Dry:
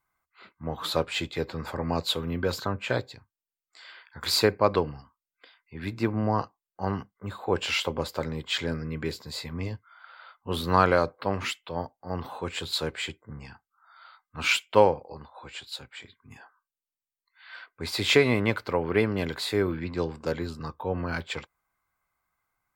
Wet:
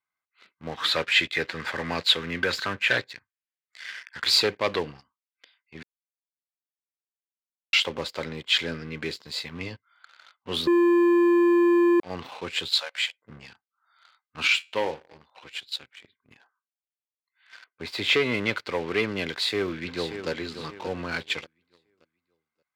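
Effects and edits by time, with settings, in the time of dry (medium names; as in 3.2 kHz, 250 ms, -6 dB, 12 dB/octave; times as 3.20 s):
0.71–4.24 s: peaking EQ 1.8 kHz +11.5 dB
5.83–7.73 s: mute
10.67–12.00 s: bleep 346 Hz -10 dBFS
12.68–13.22 s: steep high-pass 530 Hz 96 dB/octave
14.47–15.27 s: feedback comb 78 Hz, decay 0.38 s
15.91–18.34 s: peaking EQ 6.7 kHz -9 dB 2.5 oct
19.27–20.30 s: echo throw 580 ms, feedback 40%, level -11 dB
whole clip: treble shelf 2.5 kHz -6 dB; waveshaping leveller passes 2; frequency weighting D; trim -8 dB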